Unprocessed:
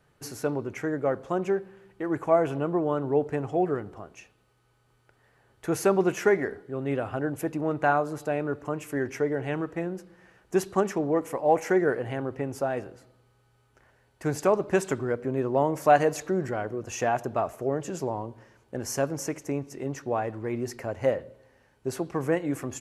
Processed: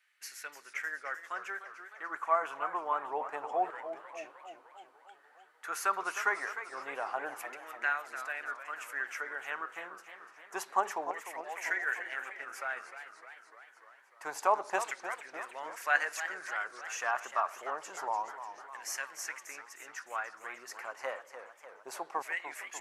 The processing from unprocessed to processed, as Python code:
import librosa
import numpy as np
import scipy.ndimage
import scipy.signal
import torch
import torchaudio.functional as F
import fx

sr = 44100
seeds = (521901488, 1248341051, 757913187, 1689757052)

y = fx.filter_lfo_highpass(x, sr, shape='saw_down', hz=0.27, low_hz=840.0, high_hz=2100.0, q=3.0)
y = fx.echo_warbled(y, sr, ms=301, feedback_pct=63, rate_hz=2.8, cents=178, wet_db=-11.0)
y = y * librosa.db_to_amplitude(-5.0)